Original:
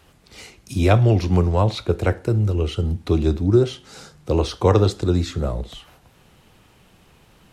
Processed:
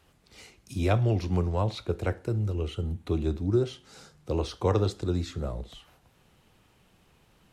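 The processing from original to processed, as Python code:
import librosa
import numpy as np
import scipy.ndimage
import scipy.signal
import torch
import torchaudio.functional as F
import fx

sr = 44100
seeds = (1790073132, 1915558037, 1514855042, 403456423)

y = fx.peak_eq(x, sr, hz=5100.0, db=-8.0, octaves=0.37, at=(2.68, 3.36))
y = F.gain(torch.from_numpy(y), -9.0).numpy()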